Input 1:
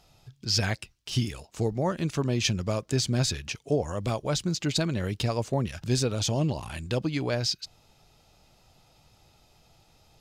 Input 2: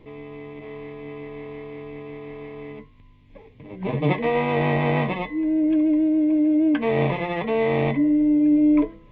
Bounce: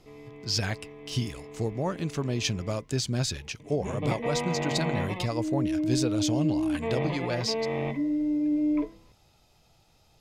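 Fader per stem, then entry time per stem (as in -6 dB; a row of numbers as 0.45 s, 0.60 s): -2.5 dB, -8.5 dB; 0.00 s, 0.00 s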